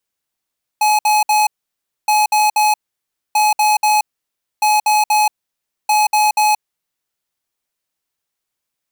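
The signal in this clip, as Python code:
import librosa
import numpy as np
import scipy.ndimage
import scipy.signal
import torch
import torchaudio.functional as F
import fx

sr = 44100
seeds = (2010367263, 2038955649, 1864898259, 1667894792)

y = fx.beep_pattern(sr, wave='square', hz=847.0, on_s=0.18, off_s=0.06, beeps=3, pause_s=0.61, groups=5, level_db=-13.0)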